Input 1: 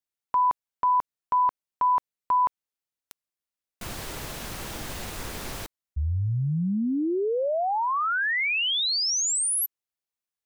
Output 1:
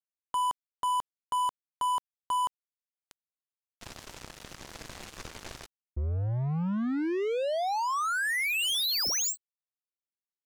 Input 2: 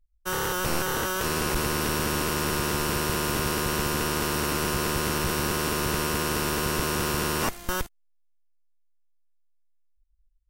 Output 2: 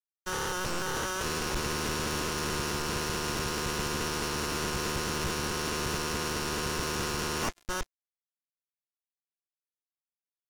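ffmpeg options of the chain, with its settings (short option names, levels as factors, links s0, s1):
-af "aresample=16000,asoftclip=type=tanh:threshold=0.0398,aresample=44100,acrusher=bits=4:mix=0:aa=0.5"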